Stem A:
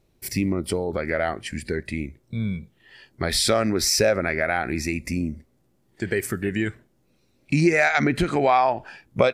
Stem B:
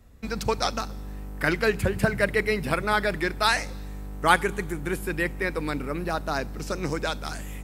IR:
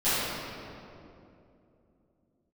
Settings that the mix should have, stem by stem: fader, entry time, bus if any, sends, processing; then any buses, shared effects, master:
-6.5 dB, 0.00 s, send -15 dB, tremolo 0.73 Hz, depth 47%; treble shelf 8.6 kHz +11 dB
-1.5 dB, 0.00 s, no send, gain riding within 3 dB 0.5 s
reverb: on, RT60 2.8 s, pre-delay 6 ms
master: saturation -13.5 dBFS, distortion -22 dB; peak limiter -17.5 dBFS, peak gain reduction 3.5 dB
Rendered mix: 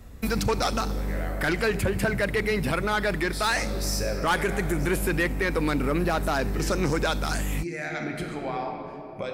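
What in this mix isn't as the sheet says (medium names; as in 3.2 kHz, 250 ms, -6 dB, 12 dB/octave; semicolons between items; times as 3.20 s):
stem A -6.5 dB -> -13.5 dB; stem B -1.5 dB -> +5.5 dB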